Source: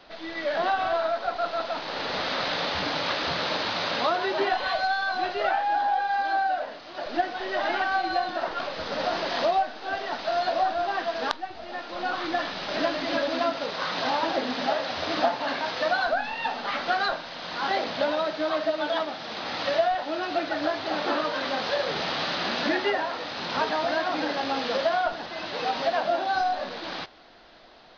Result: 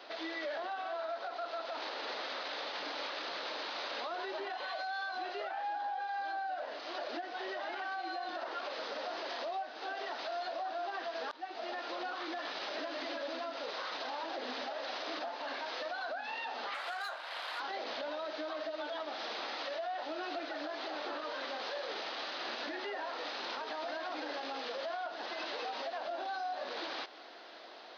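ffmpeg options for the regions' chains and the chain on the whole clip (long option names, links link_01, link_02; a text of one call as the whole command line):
ffmpeg -i in.wav -filter_complex "[0:a]asettb=1/sr,asplit=3[link_01][link_02][link_03];[link_01]atrim=end=16.744[link_04];[link_02]atrim=start=16.74:end=17.6,asetpts=PTS-STARTPTS,afade=type=in:duration=0.004:curve=qsin,afade=type=out:start_time=0.856:duration=0.004:curve=qsin,highpass=800,adynamicsmooth=sensitivity=4.5:basefreq=3100[link_05];[link_03]atrim=start=17.596[link_06];[link_04][link_05]acrossfade=duration=0.004:curve1=hsin:curve2=qsin[link_07];[link_07][link_06]acrossfade=duration=0.004:curve1=qsin:curve2=hsin,highpass=frequency=300:width=0.5412,highpass=frequency=300:width=1.3066,acompressor=threshold=-36dB:ratio=4,alimiter=level_in=8dB:limit=-24dB:level=0:latency=1:release=50,volume=-8dB,volume=1dB" out.wav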